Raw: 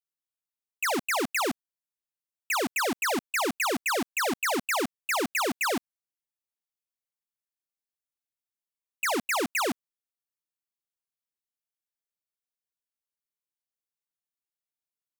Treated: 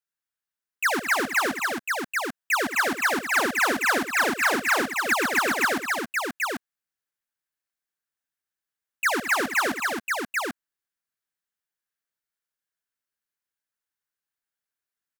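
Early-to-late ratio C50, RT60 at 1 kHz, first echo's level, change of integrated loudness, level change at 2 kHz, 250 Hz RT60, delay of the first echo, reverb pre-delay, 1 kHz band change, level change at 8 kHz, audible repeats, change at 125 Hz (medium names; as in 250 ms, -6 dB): no reverb, no reverb, -12.5 dB, +4.0 dB, +8.5 dB, no reverb, 81 ms, no reverb, +4.5 dB, +2.0 dB, 4, +2.0 dB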